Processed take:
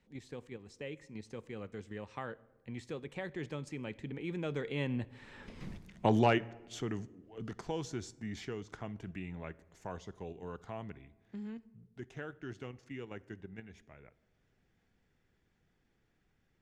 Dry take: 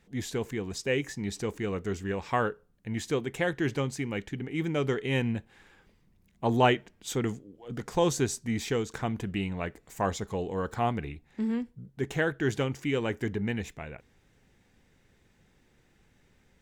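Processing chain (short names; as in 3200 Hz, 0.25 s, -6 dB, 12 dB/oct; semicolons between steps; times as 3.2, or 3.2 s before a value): Doppler pass-by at 5.68, 23 m/s, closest 1.7 m; in parallel at +2.5 dB: level quantiser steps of 23 dB; on the sum: overloaded stage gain 27.5 dB; air absorption 62 m; on a send at -22 dB: reverb RT60 1.0 s, pre-delay 46 ms; on the sum: three-band squash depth 40%; gain +16 dB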